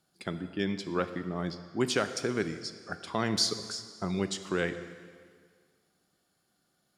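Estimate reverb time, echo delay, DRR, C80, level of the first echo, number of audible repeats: 1.9 s, none, 10.0 dB, 12.0 dB, none, none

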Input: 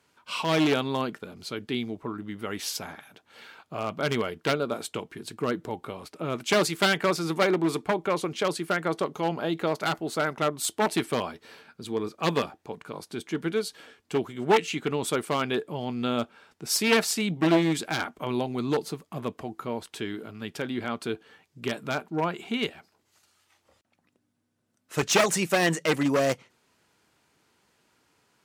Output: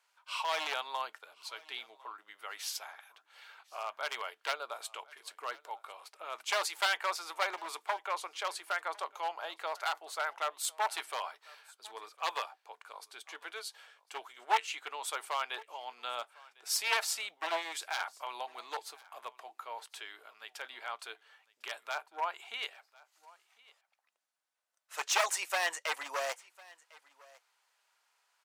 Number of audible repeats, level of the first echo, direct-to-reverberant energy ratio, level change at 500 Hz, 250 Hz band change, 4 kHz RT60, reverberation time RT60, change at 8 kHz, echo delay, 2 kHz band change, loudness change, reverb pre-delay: 1, -23.5 dB, none, -15.5 dB, -34.5 dB, none, none, -6.0 dB, 1.052 s, -6.0 dB, -8.5 dB, none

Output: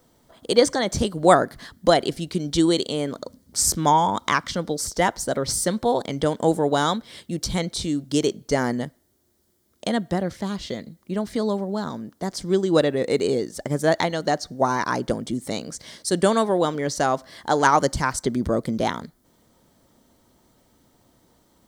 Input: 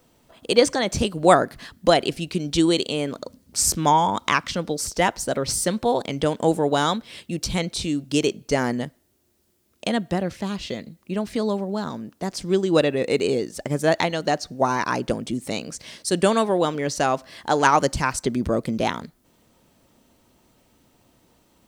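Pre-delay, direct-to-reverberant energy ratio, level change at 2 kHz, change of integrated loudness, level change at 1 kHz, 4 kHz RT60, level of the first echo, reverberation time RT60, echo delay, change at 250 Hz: none, none, -1.5 dB, 0.0 dB, 0.0 dB, none, none, none, none, 0.0 dB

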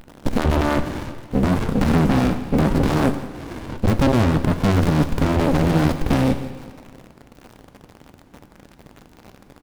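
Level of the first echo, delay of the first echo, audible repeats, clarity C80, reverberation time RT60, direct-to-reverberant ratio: -18.5 dB, 0.169 s, 1, 12.0 dB, 1.9 s, 10.0 dB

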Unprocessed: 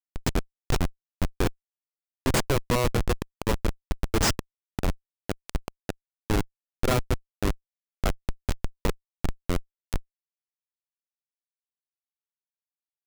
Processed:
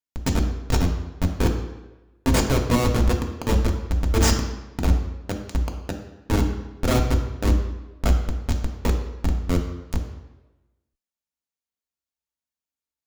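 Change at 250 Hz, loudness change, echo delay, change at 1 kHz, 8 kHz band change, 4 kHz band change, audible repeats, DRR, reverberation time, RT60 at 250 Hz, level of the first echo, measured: +6.5 dB, +5.5 dB, none, +2.5 dB, +3.0 dB, +2.5 dB, none, 2.0 dB, 1.1 s, 1.1 s, none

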